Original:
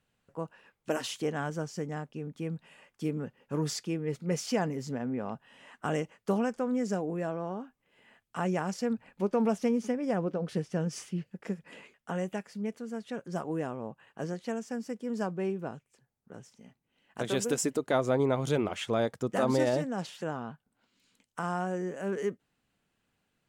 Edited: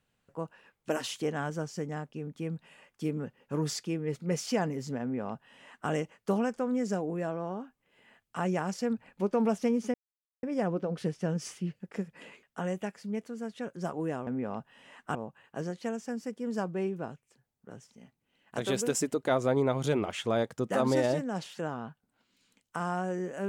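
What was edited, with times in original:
5.02–5.90 s: copy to 13.78 s
9.94 s: insert silence 0.49 s

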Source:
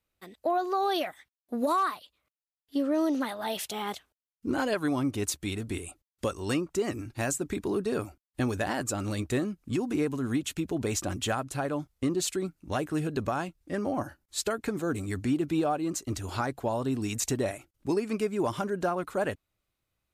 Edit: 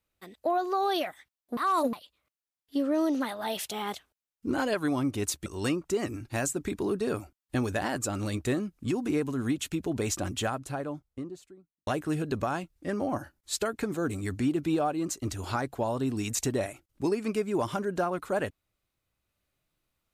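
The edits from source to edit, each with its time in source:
1.57–1.93 s: reverse
5.46–6.31 s: delete
11.07–12.72 s: studio fade out

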